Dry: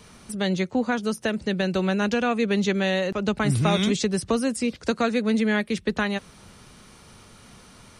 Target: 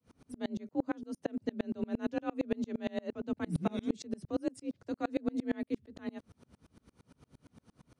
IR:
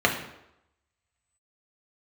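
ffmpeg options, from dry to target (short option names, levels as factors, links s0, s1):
-af "afreqshift=40,tiltshelf=f=800:g=6.5,aeval=exprs='val(0)*pow(10,-35*if(lt(mod(-8.7*n/s,1),2*abs(-8.7)/1000),1-mod(-8.7*n/s,1)/(2*abs(-8.7)/1000),(mod(-8.7*n/s,1)-2*abs(-8.7)/1000)/(1-2*abs(-8.7)/1000))/20)':c=same,volume=0.422"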